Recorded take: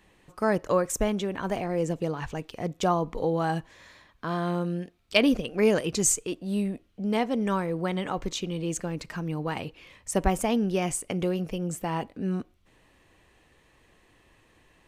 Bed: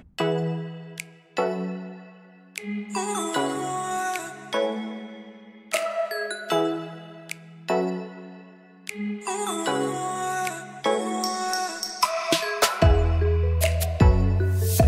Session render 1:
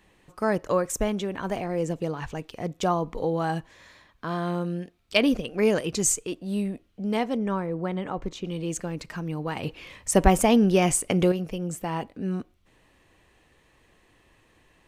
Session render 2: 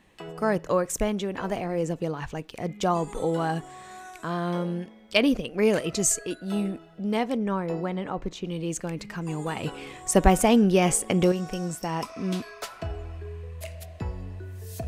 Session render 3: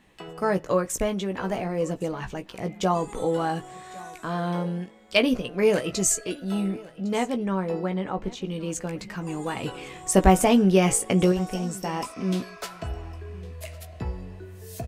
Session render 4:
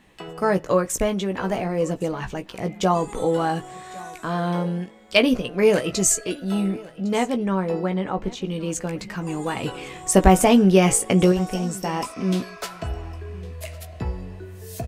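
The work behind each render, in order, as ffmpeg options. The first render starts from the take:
-filter_complex "[0:a]asettb=1/sr,asplit=3[a][b][c];[a]atrim=end=7.374[d];[b]atrim=start=7.37:end=8.45,asetpts=PTS-STARTPTS,afade=t=in:d=0.004:c=qsin,afade=t=out:st=1.076:d=0.004:c=qsin,highshelf=f=2.5k:g=-12[e];[c]atrim=start=8.446[f];[d][e]acrossfade=d=0.004:c1=hsin:c2=qsin[g];[g][f]acrossfade=d=0.004:c1=qsin:c2=hsin,asettb=1/sr,asplit=3[h][i][j];[h]atrim=end=9.634[k];[i]atrim=start=9.63:end=11.32,asetpts=PTS-STARTPTS,afade=t=in:d=0.004:c=qsin,afade=t=out:st=1.686:d=0.004:c=qsin,acontrast=70[l];[j]atrim=start=11.316[m];[k][l]acrossfade=d=0.004:c1=hsin:c2=qsin[n];[n][m]acrossfade=d=0.004:c1=qsin:c2=hsin"
-filter_complex "[1:a]volume=-16dB[a];[0:a][a]amix=inputs=2:normalize=0"
-filter_complex "[0:a]asplit=2[a][b];[b]adelay=16,volume=-7dB[c];[a][c]amix=inputs=2:normalize=0,aecho=1:1:1107:0.0841"
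-af "volume=3.5dB,alimiter=limit=-2dB:level=0:latency=1"

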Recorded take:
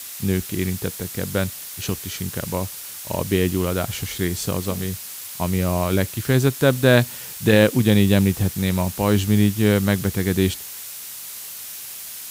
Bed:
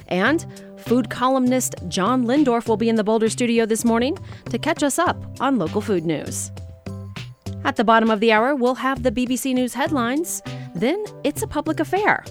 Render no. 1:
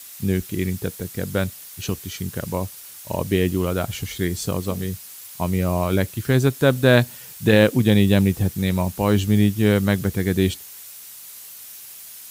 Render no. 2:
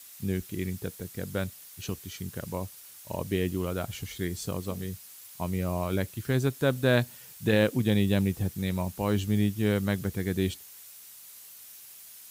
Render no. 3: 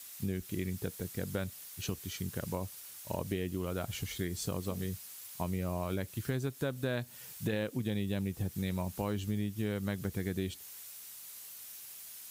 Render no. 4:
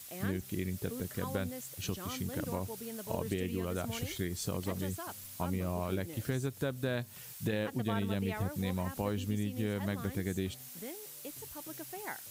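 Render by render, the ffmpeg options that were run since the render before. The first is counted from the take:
-af "afftdn=nr=7:nf=-35"
-af "volume=-8.5dB"
-af "acompressor=threshold=-31dB:ratio=6"
-filter_complex "[1:a]volume=-25dB[a];[0:a][a]amix=inputs=2:normalize=0"

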